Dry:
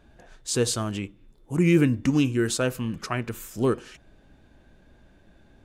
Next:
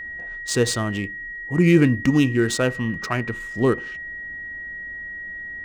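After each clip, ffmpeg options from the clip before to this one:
-af "adynamicsmooth=sensitivity=7.5:basefreq=3300,aeval=exprs='val(0)+0.0178*sin(2*PI*1900*n/s)':c=same,volume=1.58"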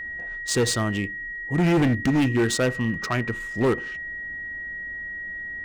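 -af "volume=6.68,asoftclip=hard,volume=0.15"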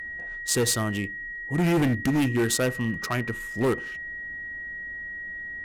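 -af "equalizer=f=12000:w=1.1:g=14,volume=0.75"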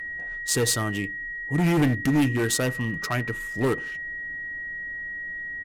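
-af "aecho=1:1:6.8:0.35"

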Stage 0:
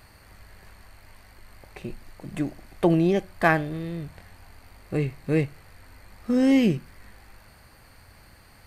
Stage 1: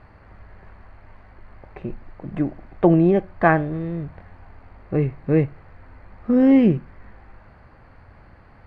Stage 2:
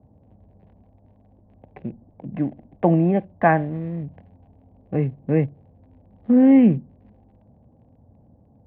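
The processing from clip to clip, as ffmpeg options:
-af "lowpass=1500,volume=1.78"
-filter_complex "[0:a]acrossover=split=150|600[s0][s1][s2];[s2]aeval=exprs='sgn(val(0))*max(abs(val(0))-0.00398,0)':c=same[s3];[s0][s1][s3]amix=inputs=3:normalize=0,highpass=100,equalizer=f=240:t=q:w=4:g=4,equalizer=f=370:t=q:w=4:g=-8,equalizer=f=780:t=q:w=4:g=3,equalizer=f=1300:t=q:w=4:g=-9,lowpass=f=2800:w=0.5412,lowpass=f=2800:w=1.3066"

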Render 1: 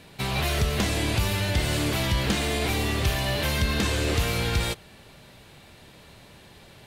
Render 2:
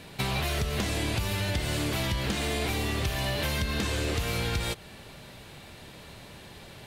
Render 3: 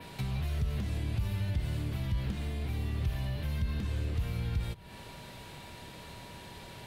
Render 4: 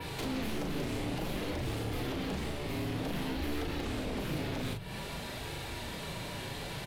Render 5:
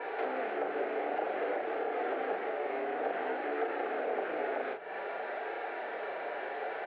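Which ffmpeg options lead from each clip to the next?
-af "acompressor=threshold=0.0355:ratio=6,volume=1.41"
-filter_complex "[0:a]adynamicequalizer=threshold=0.00282:dfrequency=6900:dqfactor=1.1:tfrequency=6900:tqfactor=1.1:attack=5:release=100:ratio=0.375:range=3:mode=cutabove:tftype=bell,aeval=exprs='val(0)+0.00224*sin(2*PI*960*n/s)':c=same,acrossover=split=190[s0][s1];[s1]acompressor=threshold=0.00631:ratio=10[s2];[s0][s2]amix=inputs=2:normalize=0"
-filter_complex "[0:a]aeval=exprs='0.0841*sin(PI/2*5.62*val(0)/0.0841)':c=same,flanger=delay=2.3:depth=5.1:regen=-42:speed=0.54:shape=sinusoidal,asplit=2[s0][s1];[s1]adelay=38,volume=0.631[s2];[s0][s2]amix=inputs=2:normalize=0,volume=0.398"
-af "highpass=f=420:w=0.5412,highpass=f=420:w=1.3066,equalizer=f=430:t=q:w=4:g=5,equalizer=f=740:t=q:w=4:g=9,equalizer=f=1000:t=q:w=4:g=-8,equalizer=f=1500:t=q:w=4:g=4,lowpass=f=2000:w=0.5412,lowpass=f=2000:w=1.3066,volume=1.78"

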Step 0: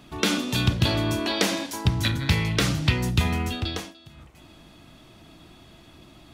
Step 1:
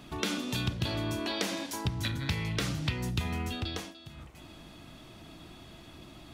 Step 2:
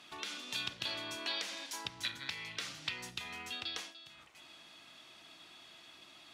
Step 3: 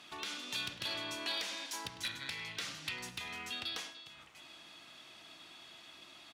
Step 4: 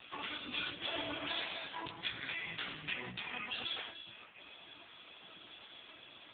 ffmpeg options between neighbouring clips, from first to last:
-af "acompressor=threshold=0.0158:ratio=2"
-af "bandpass=f=3600:t=q:w=0.5:csg=0,alimiter=limit=0.0891:level=0:latency=1:release=418"
-filter_complex "[0:a]asplit=2[s0][s1];[s1]aeval=exprs='0.0891*sin(PI/2*2.82*val(0)/0.0891)':c=same,volume=0.447[s2];[s0][s2]amix=inputs=2:normalize=0,asplit=2[s3][s4];[s4]adelay=102,lowpass=f=3600:p=1,volume=0.224,asplit=2[s5][s6];[s6]adelay=102,lowpass=f=3600:p=1,volume=0.52,asplit=2[s7][s8];[s8]adelay=102,lowpass=f=3600:p=1,volume=0.52,asplit=2[s9][s10];[s10]adelay=102,lowpass=f=3600:p=1,volume=0.52,asplit=2[s11][s12];[s12]adelay=102,lowpass=f=3600:p=1,volume=0.52[s13];[s3][s5][s7][s9][s11][s13]amix=inputs=6:normalize=0,volume=0.398"
-af "flanger=delay=16.5:depth=4.5:speed=1.9,volume=2.82" -ar 8000 -c:a libopencore_amrnb -b:a 5900

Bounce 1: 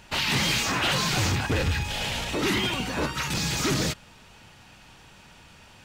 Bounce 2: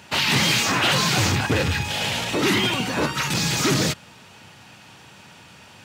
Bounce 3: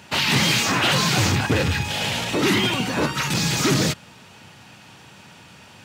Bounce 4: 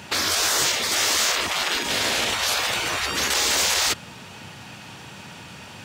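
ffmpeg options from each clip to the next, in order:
-af "highpass=f=92:w=0.5412,highpass=f=92:w=1.3066,volume=1.78"
-af "equalizer=f=180:w=0.64:g=2"
-af "afftfilt=real='re*lt(hypot(re,im),0.126)':imag='im*lt(hypot(re,im),0.126)':win_size=1024:overlap=0.75,volume=1.88"

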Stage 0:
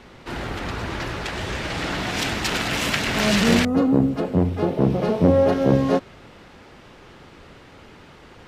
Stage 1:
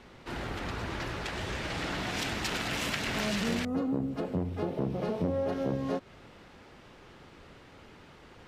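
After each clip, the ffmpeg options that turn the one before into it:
-af "acompressor=threshold=0.0794:ratio=3,volume=0.447"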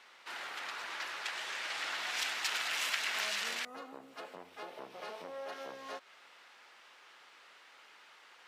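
-af "highpass=1100"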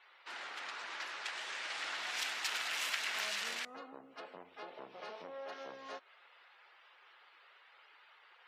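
-af "afftdn=nr=21:nf=-63,volume=0.75"

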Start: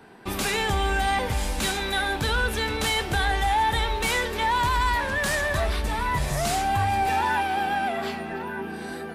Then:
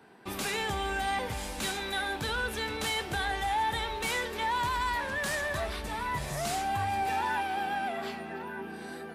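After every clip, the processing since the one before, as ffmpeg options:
-af "highpass=f=110:p=1,volume=0.473"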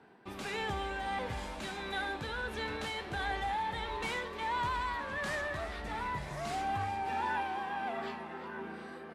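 -filter_complex "[0:a]aemphasis=mode=reproduction:type=50fm,tremolo=f=1.5:d=0.34,asplit=7[s0][s1][s2][s3][s4][s5][s6];[s1]adelay=359,afreqshift=130,volume=0.224[s7];[s2]adelay=718,afreqshift=260,volume=0.13[s8];[s3]adelay=1077,afreqshift=390,volume=0.075[s9];[s4]adelay=1436,afreqshift=520,volume=0.0437[s10];[s5]adelay=1795,afreqshift=650,volume=0.0254[s11];[s6]adelay=2154,afreqshift=780,volume=0.0146[s12];[s0][s7][s8][s9][s10][s11][s12]amix=inputs=7:normalize=0,volume=0.708"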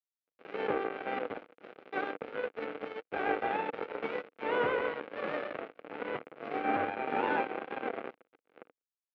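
-af "acrusher=bits=4:mix=0:aa=0.5,highpass=270,equalizer=f=290:t=q:w=4:g=5,equalizer=f=480:t=q:w=4:g=9,equalizer=f=990:t=q:w=4:g=-9,equalizer=f=1800:t=q:w=4:g=-8,lowpass=f=2100:w=0.5412,lowpass=f=2100:w=1.3066,volume=2.37"

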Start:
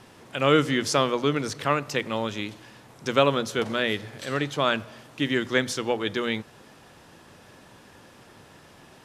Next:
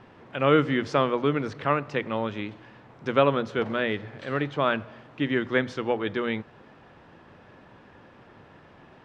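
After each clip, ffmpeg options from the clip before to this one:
-af "lowpass=2300"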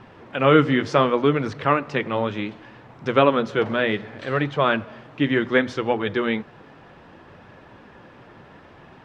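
-af "flanger=delay=0.7:depth=6.7:regen=-56:speed=0.67:shape=triangular,volume=2.82"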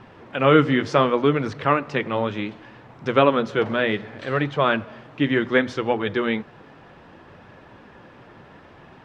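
-af anull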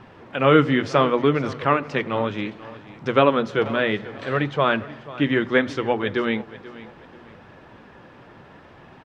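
-af "aecho=1:1:487|974|1461:0.133|0.0413|0.0128"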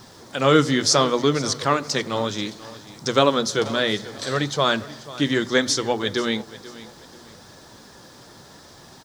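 -af "aexciter=amount=15.2:drive=6:freq=4100,volume=0.891"

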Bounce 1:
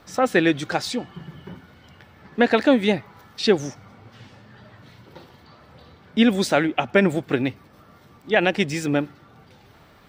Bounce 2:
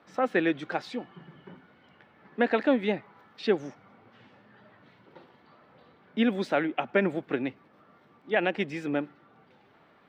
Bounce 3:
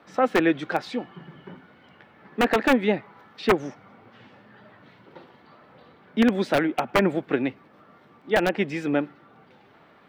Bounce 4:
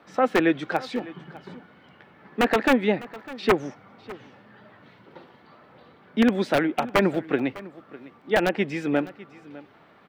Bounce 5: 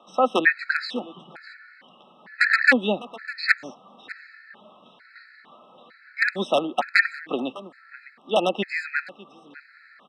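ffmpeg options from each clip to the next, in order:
-filter_complex "[0:a]acrossover=split=160 3400:gain=0.112 1 0.126[s0][s1][s2];[s0][s1][s2]amix=inputs=3:normalize=0,volume=0.473"
-filter_complex "[0:a]aeval=exprs='(mod(5.31*val(0)+1,2)-1)/5.31':c=same,acrossover=split=2700[s0][s1];[s1]acompressor=threshold=0.00891:ratio=4:attack=1:release=60[s2];[s0][s2]amix=inputs=2:normalize=0,volume=1.88"
-af "aecho=1:1:603:0.112"
-af "highpass=f=220:w=0.5412,highpass=f=220:w=1.3066,equalizer=f=300:t=q:w=4:g=-10,equalizer=f=430:t=q:w=4:g=-7,equalizer=f=920:t=q:w=4:g=-3,equalizer=f=1800:t=q:w=4:g=10,equalizer=f=4300:t=q:w=4:g=9,equalizer=f=6500:t=q:w=4:g=-6,lowpass=f=9400:w=0.5412,lowpass=f=9400:w=1.3066,afftfilt=real='re*gt(sin(2*PI*1.1*pts/sr)*(1-2*mod(floor(b*sr/1024/1300),2)),0)':imag='im*gt(sin(2*PI*1.1*pts/sr)*(1-2*mod(floor(b*sr/1024/1300),2)),0)':win_size=1024:overlap=0.75,volume=1.58"

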